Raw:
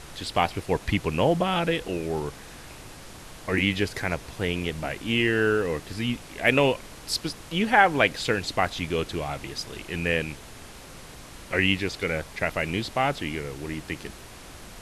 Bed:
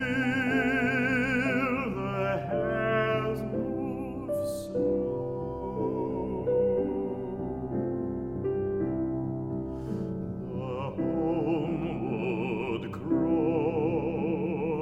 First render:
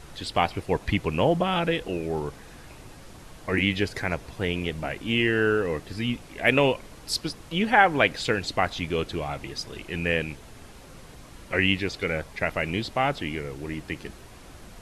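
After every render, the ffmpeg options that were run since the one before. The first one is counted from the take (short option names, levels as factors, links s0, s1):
-af "afftdn=nr=6:nf=-44"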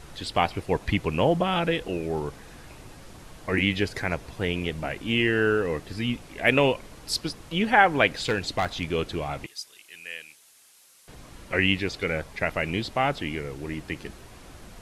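-filter_complex "[0:a]asettb=1/sr,asplit=3[s0][s1][s2];[s0]atrim=end=8.184[s3];[s1]atrim=start=8.18:end=8.93,asetpts=PTS-STARTPTS,afade=t=in:d=0.004:c=qsin,afade=t=out:st=0.746:d=0.004:c=qsin,volume=8.41,asoftclip=hard,volume=0.119[s4];[s2]atrim=start=8.926[s5];[s3][s4]acrossfade=d=0.004:c1=hsin:c2=qsin[s6];[s6][s5]acrossfade=d=0.004:c1=qsin:c2=hsin,asettb=1/sr,asplit=3[s7][s8][s9];[s7]atrim=end=9.464[s10];[s8]atrim=start=9.46:end=11.08,asetpts=PTS-STARTPTS,afade=t=in:d=0.004:c=qsin,afade=t=out:st=1.616:d=0.004:c=qsin,aderivative[s11];[s9]atrim=start=11.076[s12];[s10][s11]acrossfade=d=0.004:c1=hsin:c2=qsin[s13];[s13][s12]acrossfade=d=0.004:c1=qsin:c2=hsin"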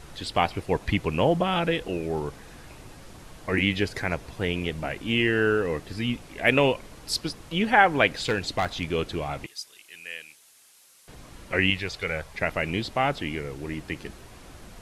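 -filter_complex "[0:a]asettb=1/sr,asplit=3[s0][s1][s2];[s0]atrim=end=11.704[s3];[s1]atrim=start=11.7:end=12.35,asetpts=PTS-STARTPTS,afade=t=in:d=0.004:c=qsin,afade=t=out:st=0.646:d=0.004:c=qsin,equalizer=f=270:t=o:w=1.1:g=-10.5[s4];[s2]atrim=start=12.346[s5];[s3][s4]acrossfade=d=0.004:c1=hsin:c2=qsin[s6];[s6][s5]acrossfade=d=0.004:c1=qsin:c2=hsin"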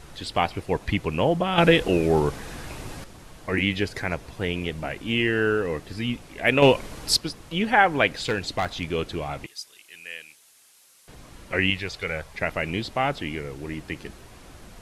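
-filter_complex "[0:a]asettb=1/sr,asplit=3[s0][s1][s2];[s0]atrim=end=6.624[s3];[s1]atrim=start=6.62:end=7.17,asetpts=PTS-STARTPTS,afade=t=in:d=0.004:c=qsin,afade=t=out:st=0.546:d=0.004:c=qsin,acontrast=84[s4];[s2]atrim=start=7.166[s5];[s3][s4]acrossfade=d=0.004:c1=hsin:c2=qsin[s6];[s6][s5]acrossfade=d=0.004:c1=qsin:c2=hsin,asplit=3[s7][s8][s9];[s7]atrim=end=1.582[s10];[s8]atrim=start=1.578:end=3.042,asetpts=PTS-STARTPTS,volume=2.66[s11];[s9]atrim=start=3.038[s12];[s10][s11]acrossfade=d=0.004:c1=hsin:c2=hsin[s13];[s13][s12]acrossfade=d=0.004:c1=hsin:c2=hsin"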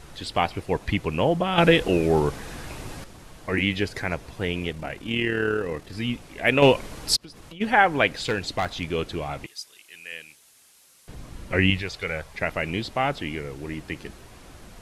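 -filter_complex "[0:a]asettb=1/sr,asplit=3[s0][s1][s2];[s0]atrim=end=4.724[s3];[s1]atrim=start=4.72:end=5.94,asetpts=PTS-STARTPTS,afade=t=in:d=0.004:c=qsin,afade=t=out:st=1.216:d=0.004:c=qsin,tremolo=f=38:d=0.462[s4];[s2]atrim=start=5.936[s5];[s3][s4]acrossfade=d=0.004:c1=hsin:c2=qsin[s6];[s6][s5]acrossfade=d=0.004:c1=qsin:c2=hsin,asplit=3[s7][s8][s9];[s7]afade=t=out:st=7.15:d=0.02[s10];[s8]acompressor=threshold=0.0126:ratio=12:attack=3.2:release=140:knee=1:detection=peak,afade=t=in:st=7.15:d=0.02,afade=t=out:st=7.6:d=0.02[s11];[s9]afade=t=in:st=7.6:d=0.02[s12];[s10][s11][s12]amix=inputs=3:normalize=0,asettb=1/sr,asplit=3[s13][s14][s15];[s13]atrim=end=10.124[s16];[s14]atrim=start=10.12:end=11.82,asetpts=PTS-STARTPTS,afade=t=in:d=0.004:c=qsin,afade=t=out:st=1.696:d=0.004:c=qsin,lowshelf=f=280:g=8[s17];[s15]atrim=start=11.816[s18];[s16][s17]acrossfade=d=0.004:c1=hsin:c2=qsin[s19];[s19][s18]acrossfade=d=0.004:c1=qsin:c2=hsin"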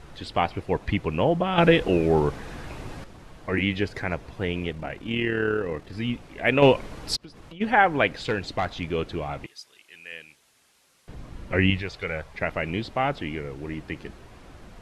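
-af "lowpass=f=2800:p=1"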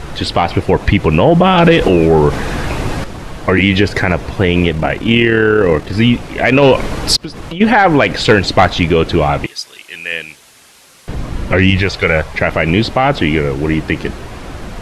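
-af "acontrast=79,alimiter=level_in=3.98:limit=0.891:release=50:level=0:latency=1"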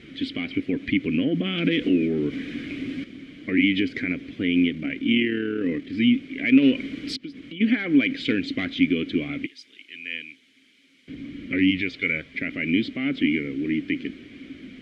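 -filter_complex "[0:a]asplit=3[s0][s1][s2];[s0]bandpass=f=270:t=q:w=8,volume=1[s3];[s1]bandpass=f=2290:t=q:w=8,volume=0.501[s4];[s2]bandpass=f=3010:t=q:w=8,volume=0.355[s5];[s3][s4][s5]amix=inputs=3:normalize=0"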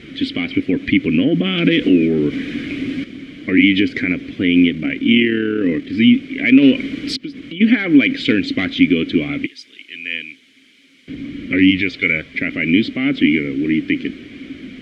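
-af "volume=2.51,alimiter=limit=0.891:level=0:latency=1"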